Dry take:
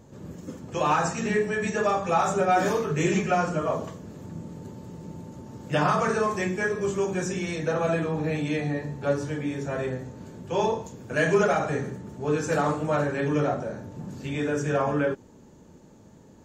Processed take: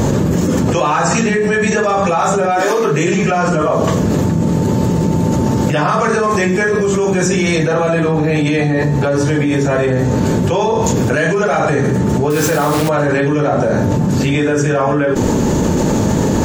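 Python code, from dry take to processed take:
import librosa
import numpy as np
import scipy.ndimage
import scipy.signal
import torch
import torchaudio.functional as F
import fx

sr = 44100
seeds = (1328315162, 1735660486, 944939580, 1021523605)

y = fx.highpass(x, sr, hz=fx.line((2.6, 340.0), (3.06, 130.0)), slope=24, at=(2.6, 3.06), fade=0.02)
y = fx.quant_dither(y, sr, seeds[0], bits=6, dither='none', at=(12.3, 12.89))
y = fx.env_flatten(y, sr, amount_pct=100)
y = y * librosa.db_to_amplitude(3.0)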